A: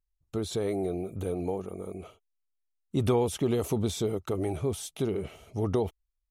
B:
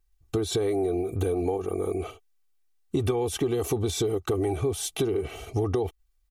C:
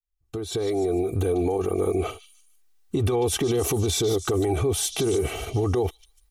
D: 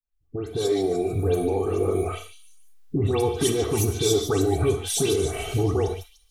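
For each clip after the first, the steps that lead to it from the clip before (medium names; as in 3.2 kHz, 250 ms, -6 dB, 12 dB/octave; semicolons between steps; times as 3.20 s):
in parallel at -1.5 dB: level held to a coarse grid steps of 11 dB; on the sum: comb 2.6 ms, depth 65%; compression 6:1, threshold -30 dBFS, peak gain reduction 15 dB; trim +6.5 dB
fade-in on the opening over 1.65 s; peak limiter -24 dBFS, peak gain reduction 9.5 dB; repeats whose band climbs or falls 148 ms, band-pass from 4.5 kHz, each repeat 0.7 oct, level -7 dB; trim +8 dB
coarse spectral quantiser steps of 15 dB; phase dispersion highs, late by 139 ms, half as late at 2 kHz; on a send at -5.5 dB: reverberation, pre-delay 7 ms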